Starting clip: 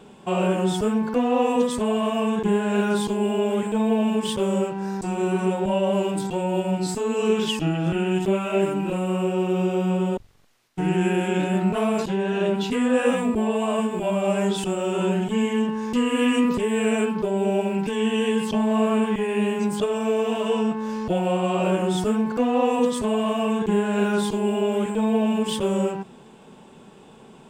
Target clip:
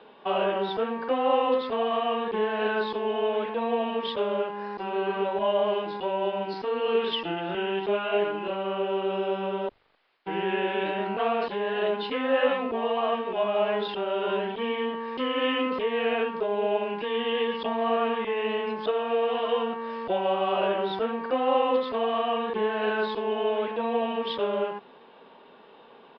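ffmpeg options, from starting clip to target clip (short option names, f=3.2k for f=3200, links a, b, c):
-filter_complex "[0:a]asetrate=46305,aresample=44100,acrossover=split=360 4200:gain=0.112 1 0.0708[a][b][c];[a][b][c]amix=inputs=3:normalize=0,aresample=11025,aresample=44100"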